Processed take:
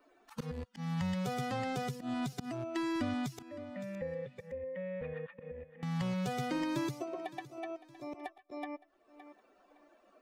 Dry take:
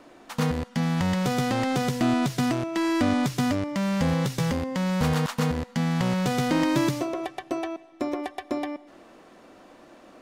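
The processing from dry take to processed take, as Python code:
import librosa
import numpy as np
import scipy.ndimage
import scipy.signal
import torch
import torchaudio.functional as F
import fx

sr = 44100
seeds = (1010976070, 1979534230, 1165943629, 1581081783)

y = fx.bin_expand(x, sr, power=2.0)
y = fx.auto_swell(y, sr, attack_ms=235.0)
y = fx.formant_cascade(y, sr, vowel='e', at=(3.42, 5.83))
y = fx.echo_feedback(y, sr, ms=564, feedback_pct=20, wet_db=-24)
y = fx.band_squash(y, sr, depth_pct=70)
y = F.gain(torch.from_numpy(y), -7.0).numpy()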